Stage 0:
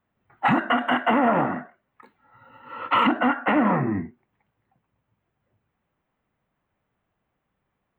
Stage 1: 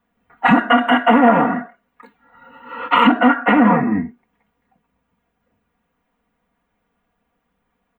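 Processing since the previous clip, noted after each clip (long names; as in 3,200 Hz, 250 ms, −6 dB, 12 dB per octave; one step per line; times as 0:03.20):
comb filter 4.2 ms, depth 95%
level +4 dB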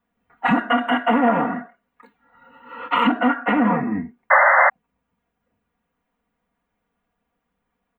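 sound drawn into the spectrogram noise, 0:04.30–0:04.70, 520–2,100 Hz −8 dBFS
level −5.5 dB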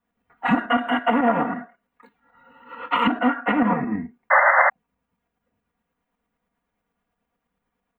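shaped tremolo saw up 9.1 Hz, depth 45%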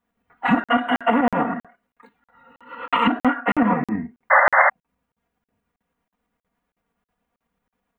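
tape wow and flutter 25 cents
regular buffer underruns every 0.32 s, samples 2,048, zero, from 0:00.64
level +1.5 dB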